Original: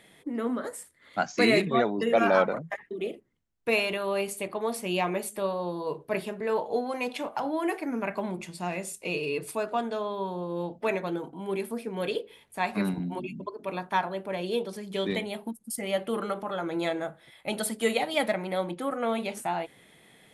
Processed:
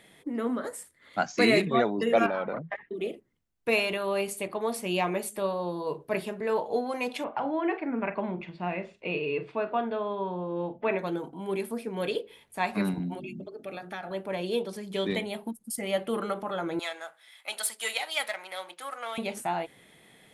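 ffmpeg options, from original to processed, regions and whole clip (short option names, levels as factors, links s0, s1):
-filter_complex "[0:a]asettb=1/sr,asplit=3[s0][s1][s2];[s0]atrim=end=2.264[s3];[s1]atrim=start=2.26:end=2.94,asetpts=PTS-STARTPTS,afade=t=in:d=0.004:c=qsin,afade=t=out:st=0.676:d=0.004:c=qsin,lowpass=f=3900:w=0.5412,lowpass=f=3900:w=1.3066,acompressor=threshold=0.0447:ratio=5:attack=3.2:release=140:knee=1:detection=peak[s4];[s2]atrim=start=2.936[s5];[s3][s4]acrossfade=d=0.004:c1=hsin:c2=qsin[s6];[s6][s5]acrossfade=d=0.004:c1=qsin:c2=hsin,asettb=1/sr,asplit=3[s7][s8][s9];[s7]atrim=end=7.244[s10];[s8]atrim=start=7.24:end=10.99,asetpts=PTS-STARTPTS,afade=t=in:d=0.004:c=qsin,afade=t=out:st=3.746:d=0.004:c=qsin,lowpass=f=3100:w=0.5412,lowpass=f=3100:w=1.3066,asplit=2[s11][s12];[s12]adelay=44,volume=0.2[s13];[s11][s13]amix=inputs=2:normalize=0,atrim=end_sample=165375[s14];[s9]atrim=start=10.986[s15];[s10][s14]acrossfade=d=0.004:c1=hsin:c2=qsin[s16];[s16][s15]acrossfade=d=0.004:c1=qsin:c2=hsin,asettb=1/sr,asplit=3[s17][s18][s19];[s17]atrim=end=13.144[s20];[s18]atrim=start=13.14:end=14.11,asetpts=PTS-STARTPTS,afade=t=in:d=0.004:c=qsin,afade=t=out:st=0.966:d=0.004:c=qsin,bandreject=f=60:t=h:w=6,bandreject=f=120:t=h:w=6,bandreject=f=180:t=h:w=6,bandreject=f=240:t=h:w=6,bandreject=f=300:t=h:w=6,bandreject=f=360:t=h:w=6,bandreject=f=420:t=h:w=6,bandreject=f=480:t=h:w=6,acompressor=threshold=0.0178:ratio=2:attack=3.2:release=140:knee=1:detection=peak,asuperstop=centerf=1000:order=4:qfactor=3.4[s21];[s19]atrim=start=14.106[s22];[s20][s21]acrossfade=d=0.004:c1=hsin:c2=qsin[s23];[s23][s22]acrossfade=d=0.004:c1=qsin:c2=hsin,asettb=1/sr,asplit=3[s24][s25][s26];[s24]atrim=end=16.794[s27];[s25]atrim=start=16.79:end=19.18,asetpts=PTS-STARTPTS,afade=t=in:d=0.004:c=qsin,afade=t=out:st=2.386:d=0.004:c=qsin,aeval=exprs='if(lt(val(0),0),0.708*val(0),val(0))':c=same,highpass=990,equalizer=f=7000:w=0.42:g=4.5[s28];[s26]atrim=start=19.176[s29];[s27][s28]acrossfade=d=0.004:c1=hsin:c2=qsin[s30];[s30][s29]acrossfade=d=0.004:c1=qsin:c2=hsin"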